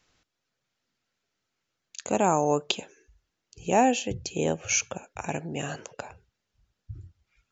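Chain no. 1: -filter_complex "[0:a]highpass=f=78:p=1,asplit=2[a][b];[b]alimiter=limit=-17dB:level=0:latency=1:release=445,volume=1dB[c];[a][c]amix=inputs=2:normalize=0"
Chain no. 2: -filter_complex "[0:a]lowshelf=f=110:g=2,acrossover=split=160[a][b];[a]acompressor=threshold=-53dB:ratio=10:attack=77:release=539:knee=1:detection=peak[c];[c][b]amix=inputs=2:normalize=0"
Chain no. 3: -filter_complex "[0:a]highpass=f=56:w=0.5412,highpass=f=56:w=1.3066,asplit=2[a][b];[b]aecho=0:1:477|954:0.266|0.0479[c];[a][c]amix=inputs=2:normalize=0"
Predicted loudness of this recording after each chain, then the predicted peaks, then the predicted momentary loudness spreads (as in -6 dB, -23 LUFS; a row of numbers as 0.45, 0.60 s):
-23.5, -27.5, -27.5 LUFS; -4.5, -7.0, -7.0 dBFS; 19, 18, 20 LU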